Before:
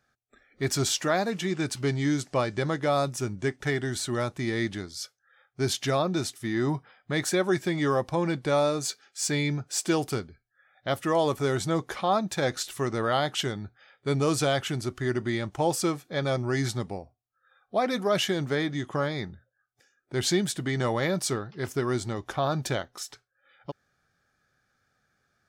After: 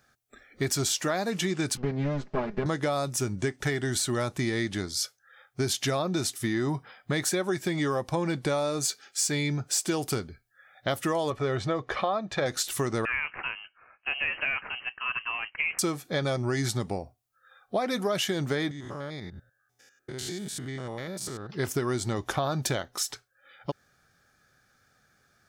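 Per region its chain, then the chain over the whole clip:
1.77–2.66 minimum comb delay 4.8 ms + tape spacing loss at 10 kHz 37 dB
11.3–12.46 LPF 3000 Hz + bell 170 Hz -9 dB 0.28 oct + comb 1.7 ms, depth 33%
13.05–15.79 median filter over 15 samples + HPF 1100 Hz 6 dB/oct + inverted band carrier 3000 Hz
18.71–21.5 stepped spectrum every 0.1 s + compressor 3:1, threshold -44 dBFS
whole clip: high shelf 6400 Hz +6.5 dB; compressor, threshold -31 dBFS; gain +6 dB

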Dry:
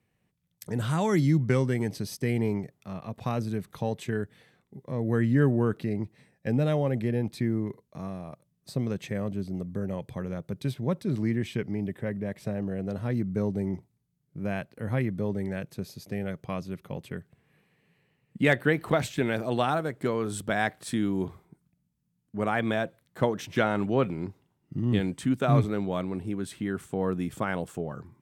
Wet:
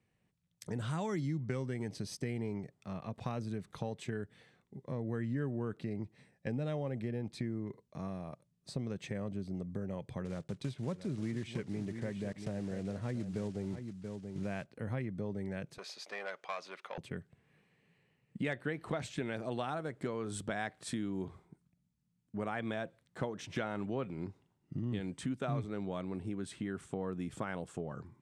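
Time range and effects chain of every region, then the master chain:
10.25–14.68 block floating point 5-bit + LPF 11000 Hz + echo 0.681 s -11.5 dB
15.78–16.98 high shelf 8200 Hz -7.5 dB + overdrive pedal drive 18 dB, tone 3100 Hz, clips at -20 dBFS + HPF 760 Hz
whole clip: LPF 9500 Hz 24 dB/oct; compressor 3:1, threshold -32 dBFS; gain -3.5 dB

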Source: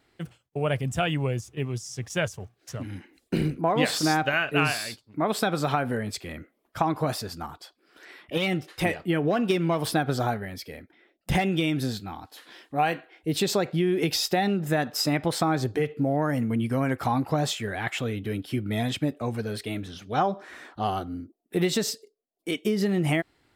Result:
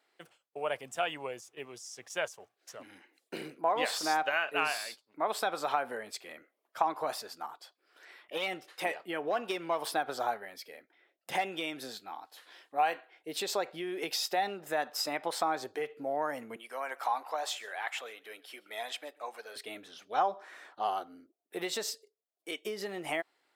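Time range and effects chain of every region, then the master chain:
16.56–19.56 HPF 600 Hz + echo 0.132 s -22 dB
whole clip: Chebyshev high-pass 570 Hz, order 2; dynamic EQ 930 Hz, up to +4 dB, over -42 dBFS, Q 2.3; gain -5.5 dB

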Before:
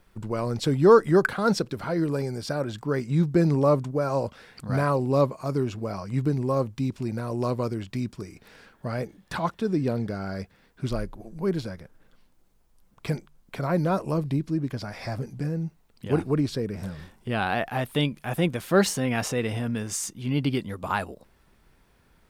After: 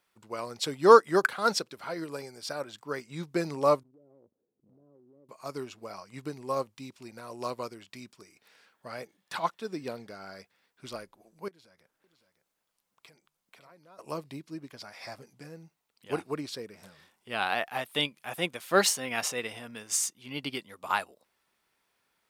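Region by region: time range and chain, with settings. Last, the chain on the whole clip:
3.83–5.29 ladder low-pass 420 Hz, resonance 45% + compressor 10:1, threshold -37 dBFS
11.48–13.99 compressor 3:1, threshold -44 dBFS + echo 0.56 s -10.5 dB
whole clip: HPF 1200 Hz 6 dB/oct; bell 1600 Hz -3 dB 0.35 oct; upward expander 1.5:1, over -48 dBFS; gain +8 dB

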